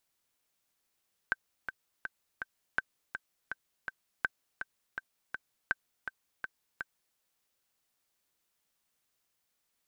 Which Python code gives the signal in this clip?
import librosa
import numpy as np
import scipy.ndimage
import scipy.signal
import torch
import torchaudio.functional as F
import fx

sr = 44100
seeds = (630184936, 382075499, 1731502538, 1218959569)

y = fx.click_track(sr, bpm=164, beats=4, bars=4, hz=1550.0, accent_db=8.5, level_db=-14.5)